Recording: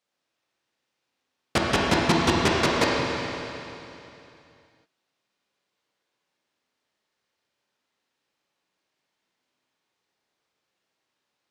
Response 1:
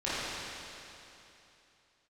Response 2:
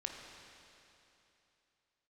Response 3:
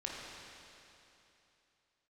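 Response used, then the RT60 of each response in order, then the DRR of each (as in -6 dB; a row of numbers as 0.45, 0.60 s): 3; 2.9, 3.0, 3.0 s; -12.5, 1.5, -3.5 dB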